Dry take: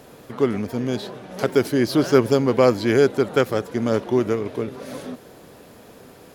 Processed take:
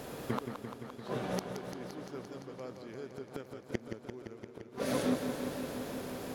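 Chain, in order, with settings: flipped gate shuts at -20 dBFS, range -31 dB; warbling echo 0.172 s, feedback 80%, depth 68 cents, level -8 dB; gain +1.5 dB

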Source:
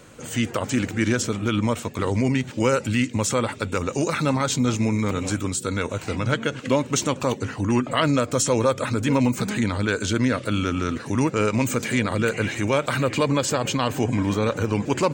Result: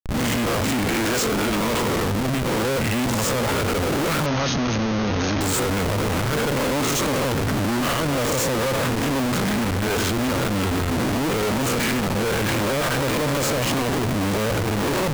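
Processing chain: spectral swells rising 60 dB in 0.80 s; 0.87–2 HPF 370 Hz 6 dB/oct; limiter -14.5 dBFS, peak gain reduction 10 dB; Schmitt trigger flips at -31 dBFS; 4.26–5.41 brick-wall FIR low-pass 6700 Hz; core saturation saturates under 62 Hz; gain +3 dB

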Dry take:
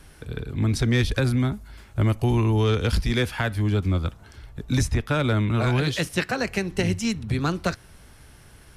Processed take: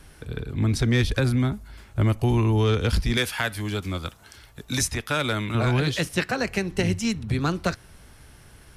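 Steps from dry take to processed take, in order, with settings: 3.17–5.55 tilt +2.5 dB/oct

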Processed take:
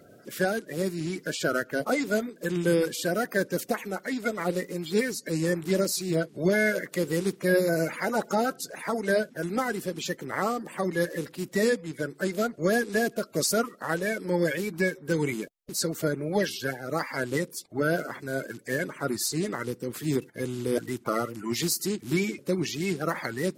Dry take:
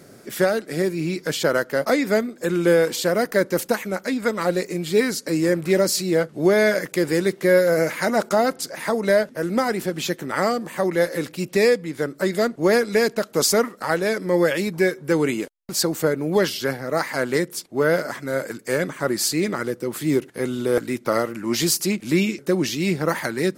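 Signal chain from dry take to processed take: bin magnitudes rounded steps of 30 dB; gain -6 dB

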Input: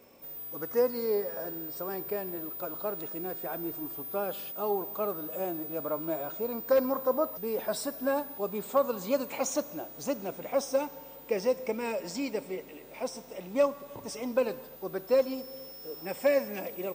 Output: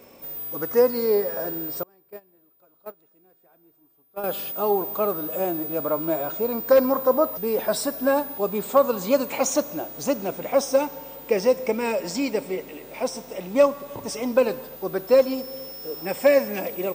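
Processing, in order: 1.83–4.24 gate -28 dBFS, range -31 dB; gain +8 dB

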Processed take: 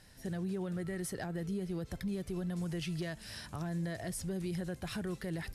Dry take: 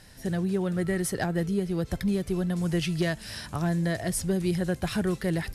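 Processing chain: limiter -22.5 dBFS, peak gain reduction 5 dB; gain -7.5 dB

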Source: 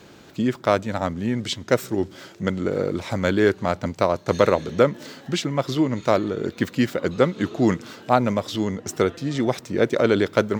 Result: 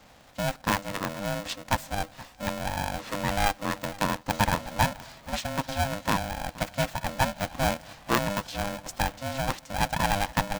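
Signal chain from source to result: echo 0.473 s -19.5 dB; polarity switched at an audio rate 400 Hz; gain -7 dB

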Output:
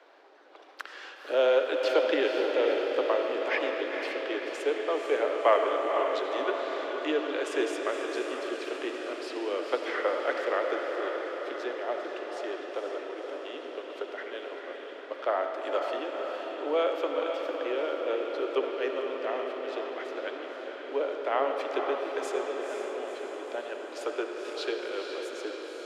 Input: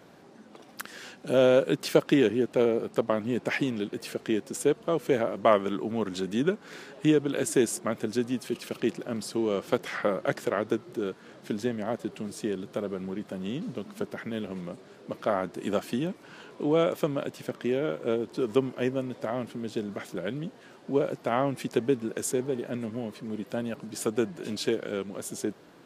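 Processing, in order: steep high-pass 270 Hz 72 dB/oct; three-band isolator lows -23 dB, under 400 Hz, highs -21 dB, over 4700 Hz; diffused feedback echo 0.494 s, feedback 65%, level -5.5 dB; on a send at -5 dB: reverb RT60 2.8 s, pre-delay 35 ms

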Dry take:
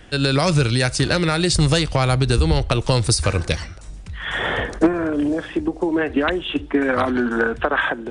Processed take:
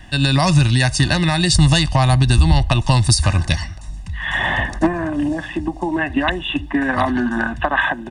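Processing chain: comb 1.1 ms, depth 98%; bit-crush 12-bit

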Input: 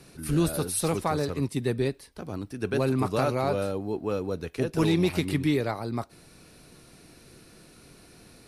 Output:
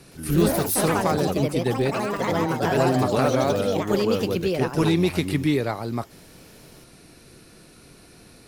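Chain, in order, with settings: echoes that change speed 0.116 s, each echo +4 st, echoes 3; gain +3 dB

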